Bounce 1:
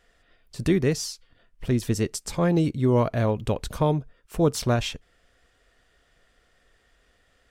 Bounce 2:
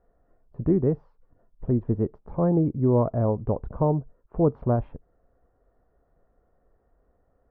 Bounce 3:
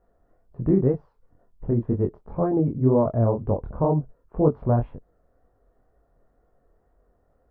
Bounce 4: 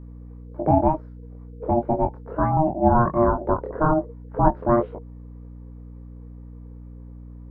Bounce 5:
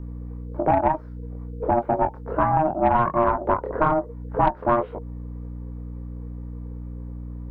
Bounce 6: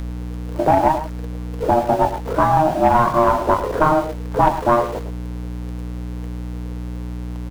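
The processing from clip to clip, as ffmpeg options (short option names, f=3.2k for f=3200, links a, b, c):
-af "lowpass=f=1k:w=0.5412,lowpass=f=1k:w=1.3066"
-af "flanger=delay=20:depth=6.4:speed=2,volume=4.5dB"
-af "aeval=exprs='val(0)*sin(2*PI*470*n/s)':c=same,aeval=exprs='val(0)+0.00708*(sin(2*PI*60*n/s)+sin(2*PI*2*60*n/s)/2+sin(2*PI*3*60*n/s)/3+sin(2*PI*4*60*n/s)/4+sin(2*PI*5*60*n/s)/5)':c=same,volume=4.5dB"
-filter_complex "[0:a]aeval=exprs='0.841*(cos(1*acos(clip(val(0)/0.841,-1,1)))-cos(1*PI/2))+0.0531*(cos(6*acos(clip(val(0)/0.841,-1,1)))-cos(6*PI/2))':c=same,acrossover=split=700|1800[a][b][c];[a]acompressor=threshold=-31dB:ratio=4[d];[b]acompressor=threshold=-24dB:ratio=4[e];[c]acompressor=threshold=-46dB:ratio=4[f];[d][e][f]amix=inputs=3:normalize=0,volume=6dB"
-af "aeval=exprs='val(0)+0.5*0.0224*sgn(val(0))':c=same,aecho=1:1:110:0.266,volume=4dB"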